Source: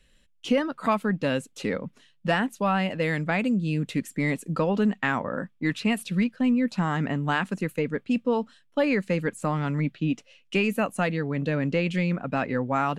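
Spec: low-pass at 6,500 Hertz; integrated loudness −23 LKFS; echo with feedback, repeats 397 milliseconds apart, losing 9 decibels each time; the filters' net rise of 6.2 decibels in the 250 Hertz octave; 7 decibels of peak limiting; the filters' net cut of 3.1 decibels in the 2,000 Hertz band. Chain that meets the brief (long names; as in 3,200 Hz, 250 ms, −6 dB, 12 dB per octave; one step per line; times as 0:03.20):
low-pass filter 6,500 Hz
parametric band 250 Hz +7.5 dB
parametric band 2,000 Hz −4 dB
brickwall limiter −13.5 dBFS
repeating echo 397 ms, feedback 35%, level −9 dB
level +0.5 dB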